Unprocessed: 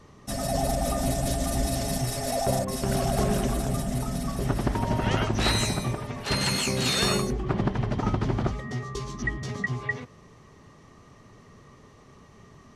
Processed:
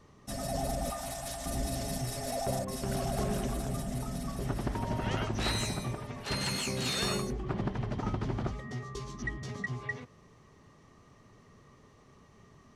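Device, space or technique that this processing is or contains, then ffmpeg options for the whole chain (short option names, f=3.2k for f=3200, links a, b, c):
parallel distortion: -filter_complex "[0:a]asplit=2[a][b];[b]asoftclip=type=hard:threshold=-26dB,volume=-12dB[c];[a][c]amix=inputs=2:normalize=0,asettb=1/sr,asplit=3[d][e][f];[d]atrim=end=0.904[g];[e]atrim=start=0.9:end=1.46,asetpts=PTS-STARTPTS,afade=t=in:d=0.004:c=qsin,afade=t=out:st=0.556:d=0.004:c=qsin,lowshelf=f=610:t=q:w=1.5:g=-10[h];[f]atrim=start=1.456[i];[g][h]acrossfade=d=0.004:c1=hsin:c2=qsin[j];[j][i]acrossfade=d=0.004:c1=qsin:c2=hsin,volume=-8.5dB"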